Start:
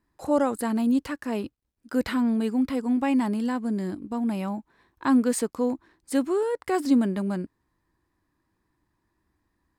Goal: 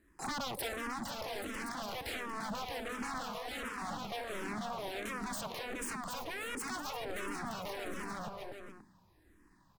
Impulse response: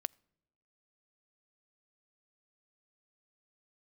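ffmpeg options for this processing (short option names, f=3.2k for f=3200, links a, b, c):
-filter_complex "[0:a]aeval=exprs='if(lt(val(0),0),0.708*val(0),val(0))':c=same[a];[1:a]atrim=start_sample=2205,asetrate=35721,aresample=44100[b];[a][b]afir=irnorm=-1:irlink=0,acompressor=threshold=-27dB:ratio=10,aeval=exprs='0.0141*(abs(mod(val(0)/0.0141+3,4)-2)-1)':c=same,asettb=1/sr,asplit=3[c][d][e];[c]atrim=end=3.244[f];[d]atrim=start=3.24:end=3.82,asetpts=PTS-STARTPTS,afade=t=in:d=0.004:c=qsin,afade=t=out:st=0.576:d=0.004:c=qsin,highpass=1.1k[g];[e]atrim=start=3.816[h];[f][g]acrossfade=d=0.004:c1=hsin:c2=qsin[i];[i][h]acrossfade=d=0.004:c1=qsin:c2=hsin,aecho=1:1:490|833|1073|1241|1359:0.631|0.398|0.251|0.158|0.1,alimiter=level_in=15.5dB:limit=-24dB:level=0:latency=1:release=69,volume=-15.5dB,asplit=2[j][k];[k]afreqshift=-1.4[l];[j][l]amix=inputs=2:normalize=1,volume=10dB"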